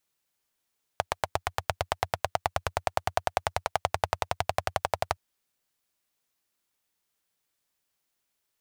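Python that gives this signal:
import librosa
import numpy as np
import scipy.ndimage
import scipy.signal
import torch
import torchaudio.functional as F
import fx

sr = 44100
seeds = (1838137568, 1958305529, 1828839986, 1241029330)

y = fx.engine_single_rev(sr, seeds[0], length_s=4.17, rpm=1000, resonances_hz=(90.0, 710.0), end_rpm=1400)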